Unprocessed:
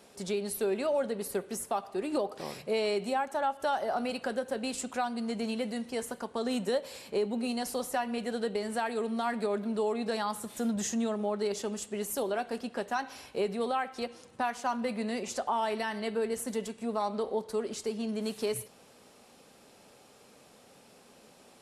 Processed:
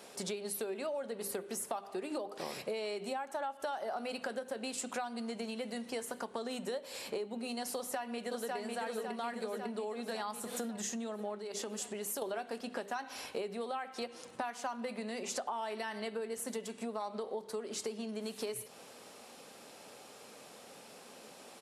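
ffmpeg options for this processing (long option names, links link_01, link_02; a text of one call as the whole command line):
ffmpeg -i in.wav -filter_complex "[0:a]asplit=2[link_01][link_02];[link_02]afade=type=in:start_time=7.76:duration=0.01,afade=type=out:start_time=8.56:duration=0.01,aecho=0:1:550|1100|1650|2200|2750|3300|3850|4400|4950:0.944061|0.566437|0.339862|0.203917|0.12235|0.0734102|0.0440461|0.0264277|0.0158566[link_03];[link_01][link_03]amix=inputs=2:normalize=0,asettb=1/sr,asplit=3[link_04][link_05][link_06];[link_04]atrim=end=11.384[link_07];[link_05]atrim=start=11.38:end=12.22,asetpts=PTS-STARTPTS,afade=type=in:duration=0.004:curve=qsin,afade=type=out:start_time=0.836:duration=0.004:curve=qsin,acompressor=threshold=-38dB:ratio=4:attack=3.2:release=140:knee=1:detection=peak[link_08];[link_06]atrim=start=12.216[link_09];[link_07][link_08]acrossfade=duration=0.004:curve1=hsin:curve2=qsin[link_10];[link_10][link_09]acrossfade=duration=0.004:curve1=qsin:curve2=hsin,bandreject=frequency=50:width_type=h:width=6,bandreject=frequency=100:width_type=h:width=6,bandreject=frequency=150:width_type=h:width=6,bandreject=frequency=200:width_type=h:width=6,bandreject=frequency=250:width_type=h:width=6,bandreject=frequency=300:width_type=h:width=6,bandreject=frequency=350:width_type=h:width=6,bandreject=frequency=400:width_type=h:width=6,acompressor=threshold=-39dB:ratio=12,highpass=frequency=250:poles=1,volume=5dB" out.wav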